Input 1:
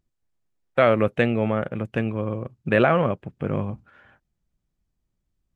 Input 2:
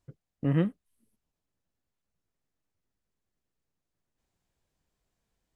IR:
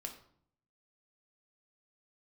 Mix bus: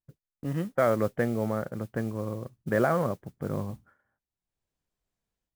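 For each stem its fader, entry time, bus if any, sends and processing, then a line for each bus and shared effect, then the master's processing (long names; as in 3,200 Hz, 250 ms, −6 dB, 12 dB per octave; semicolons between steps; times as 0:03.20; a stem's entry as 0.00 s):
−6.0 dB, 0.00 s, no send, Savitzky-Golay smoothing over 41 samples
−4.5 dB, 0.00 s, no send, automatic gain control gain up to 14.5 dB; automatic ducking −16 dB, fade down 0.65 s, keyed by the first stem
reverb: not used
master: noise gate −57 dBFS, range −16 dB; noise that follows the level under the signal 25 dB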